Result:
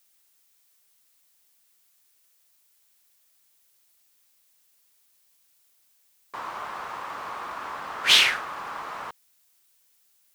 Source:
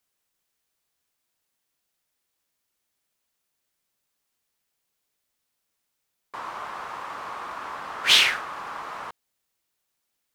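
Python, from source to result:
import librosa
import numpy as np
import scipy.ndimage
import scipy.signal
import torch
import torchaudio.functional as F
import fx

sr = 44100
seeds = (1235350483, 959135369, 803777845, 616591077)

y = fx.dmg_noise_colour(x, sr, seeds[0], colour='blue', level_db=-65.0)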